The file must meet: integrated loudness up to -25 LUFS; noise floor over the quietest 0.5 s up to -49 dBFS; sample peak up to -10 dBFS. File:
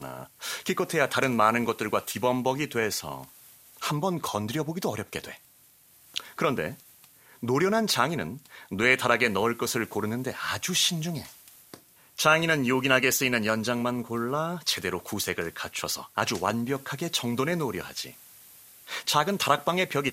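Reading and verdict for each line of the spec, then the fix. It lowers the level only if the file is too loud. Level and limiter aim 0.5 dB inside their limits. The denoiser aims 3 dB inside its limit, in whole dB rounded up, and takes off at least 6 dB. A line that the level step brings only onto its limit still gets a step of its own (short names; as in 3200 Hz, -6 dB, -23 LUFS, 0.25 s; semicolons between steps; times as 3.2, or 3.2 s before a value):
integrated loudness -27.0 LUFS: OK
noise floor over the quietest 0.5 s -58 dBFS: OK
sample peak -5.0 dBFS: fail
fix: limiter -10.5 dBFS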